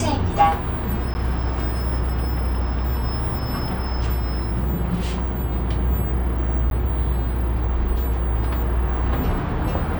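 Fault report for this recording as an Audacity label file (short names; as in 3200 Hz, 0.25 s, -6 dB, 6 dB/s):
1.140000	1.150000	gap 10 ms
6.700000	6.710000	gap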